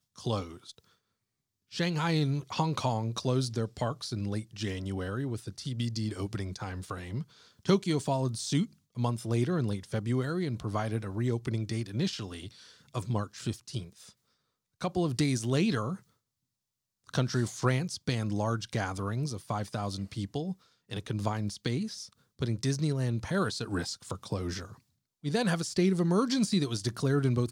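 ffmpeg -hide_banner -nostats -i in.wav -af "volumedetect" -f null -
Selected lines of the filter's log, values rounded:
mean_volume: -31.8 dB
max_volume: -12.2 dB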